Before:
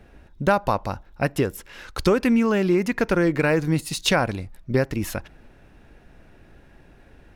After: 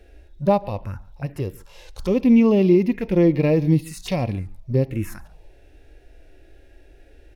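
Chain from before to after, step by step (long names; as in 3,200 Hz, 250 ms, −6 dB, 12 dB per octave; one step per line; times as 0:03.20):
phaser swept by the level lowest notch 170 Hz, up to 1,500 Hz, full sweep at −18 dBFS
harmonic and percussive parts rebalanced percussive −16 dB
slap from a distant wall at 24 metres, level −23 dB
level +5.5 dB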